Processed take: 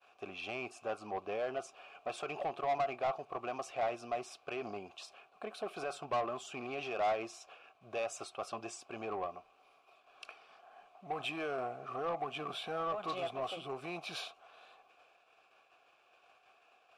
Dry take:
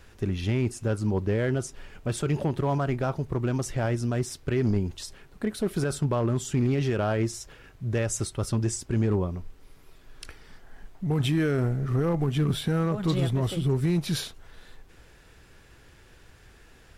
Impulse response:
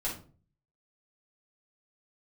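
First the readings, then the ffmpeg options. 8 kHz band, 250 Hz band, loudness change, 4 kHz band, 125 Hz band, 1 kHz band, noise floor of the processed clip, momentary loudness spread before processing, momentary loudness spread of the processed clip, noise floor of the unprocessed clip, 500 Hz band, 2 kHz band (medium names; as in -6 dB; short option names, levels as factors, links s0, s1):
-16.0 dB, -20.5 dB, -12.0 dB, -8.0 dB, -30.5 dB, 0.0 dB, -68 dBFS, 10 LU, 18 LU, -54 dBFS, -8.5 dB, -6.0 dB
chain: -filter_complex "[0:a]agate=range=0.0224:threshold=0.00447:ratio=3:detection=peak,asplit=3[s0][s1][s2];[s0]bandpass=f=730:t=q:w=8,volume=1[s3];[s1]bandpass=f=1090:t=q:w=8,volume=0.501[s4];[s2]bandpass=f=2440:t=q:w=8,volume=0.355[s5];[s3][s4][s5]amix=inputs=3:normalize=0,highshelf=f=5400:g=7,asplit=2[s6][s7];[s7]highpass=f=720:p=1,volume=6.31,asoftclip=type=tanh:threshold=0.0531[s8];[s6][s8]amix=inputs=2:normalize=0,lowpass=f=7400:p=1,volume=0.501"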